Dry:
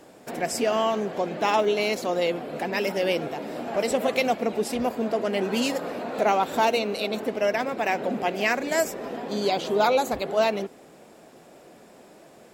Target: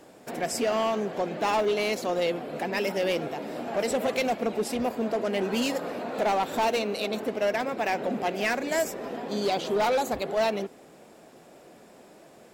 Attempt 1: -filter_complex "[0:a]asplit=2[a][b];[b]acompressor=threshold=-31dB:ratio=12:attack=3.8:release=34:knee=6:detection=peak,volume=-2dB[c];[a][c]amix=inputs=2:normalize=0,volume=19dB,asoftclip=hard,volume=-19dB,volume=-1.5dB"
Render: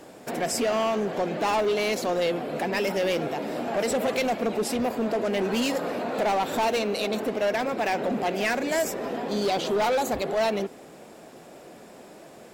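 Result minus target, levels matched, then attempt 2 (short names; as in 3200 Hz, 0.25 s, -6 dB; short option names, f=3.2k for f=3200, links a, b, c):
compressor: peak gain reduction +15 dB
-af "volume=19dB,asoftclip=hard,volume=-19dB,volume=-1.5dB"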